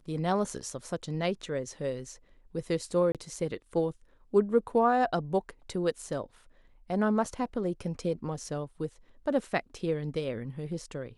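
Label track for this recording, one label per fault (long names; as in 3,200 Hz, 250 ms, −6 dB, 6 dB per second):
3.120000	3.150000	drop-out 27 ms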